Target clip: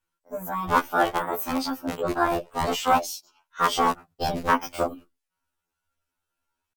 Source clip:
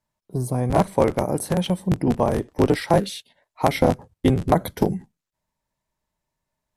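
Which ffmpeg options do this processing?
-af "asetrate=66075,aresample=44100,atempo=0.66742,equalizer=f=170:t=o:w=2.3:g=-11,afftfilt=real='re*2*eq(mod(b,4),0)':imag='im*2*eq(mod(b,4),0)':win_size=2048:overlap=0.75,volume=2.5dB"

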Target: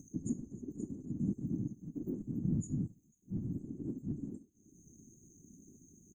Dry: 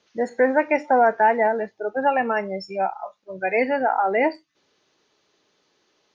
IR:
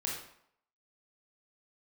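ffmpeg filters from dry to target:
-filter_complex "[0:a]asettb=1/sr,asplit=3[a][b][c];[a]atrim=end=1.164[d];[b]atrim=start=1.16:end=3.56,asetpts=PTS-STARTPTS,afade=t=in:d=0.004:c=qsin,afade=t=out:st=2.396:d=0.004:c=qsin,tiltshelf=f=1.2k:g=-3.5[e];[c]atrim=start=3.556[f];[d][e]acrossfade=d=0.004:c1=hsin:c2=qsin[g];[g][f]acrossfade=d=0.004:c1=qsin:c2=hsin,asplit=2[h][i];[i]adelay=70,lowpass=f=2.7k:p=1,volume=-14.5dB,asplit=2[j][k];[k]adelay=70,lowpass=f=2.7k:p=1,volume=0.24,asplit=2[l][m];[m]adelay=70,lowpass=f=2.7k:p=1,volume=0.24[n];[h][j][l][n]amix=inputs=4:normalize=0,afftfilt=real='re*lt(hypot(re,im),0.158)':imag='im*lt(hypot(re,im),0.158)':win_size=1024:overlap=0.75,acompressor=mode=upward:threshold=-43dB:ratio=2.5,afftfilt=real='re*(1-between(b*sr/4096,300,6200))':imag='im*(1-between(b*sr/4096,300,6200))':win_size=4096:overlap=0.75,afftfilt=real='hypot(re,im)*cos(2*PI*random(0))':imag='hypot(re,im)*sin(2*PI*random(1))':win_size=512:overlap=0.75,lowshelf=f=370:g=5.5,volume=10dB"

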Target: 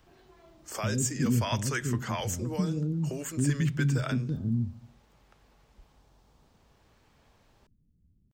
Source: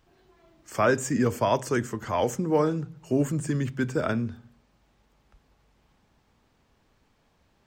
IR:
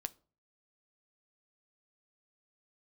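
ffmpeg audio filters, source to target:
-filter_complex "[0:a]acrossover=split=240|1400|2900[a][b][c][d];[a]atempo=0.92[e];[b]acompressor=threshold=-42dB:ratio=4[f];[c]tremolo=f=0.56:d=0.87[g];[e][f][g][d]amix=inputs=4:normalize=0,volume=3.5dB"

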